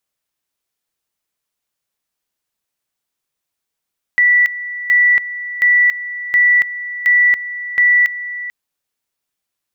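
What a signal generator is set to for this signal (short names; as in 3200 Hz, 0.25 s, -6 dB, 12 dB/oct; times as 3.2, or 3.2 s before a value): two-level tone 1960 Hz -8 dBFS, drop 14.5 dB, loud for 0.28 s, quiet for 0.44 s, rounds 6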